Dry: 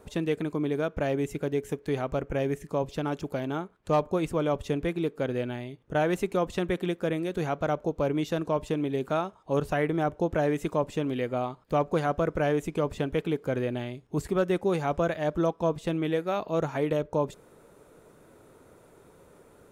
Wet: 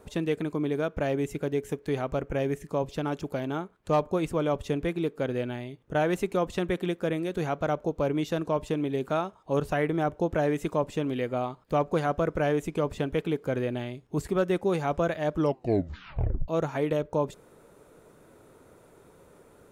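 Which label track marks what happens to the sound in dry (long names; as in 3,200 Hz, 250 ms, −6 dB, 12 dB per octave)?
15.340000	15.340000	tape stop 1.14 s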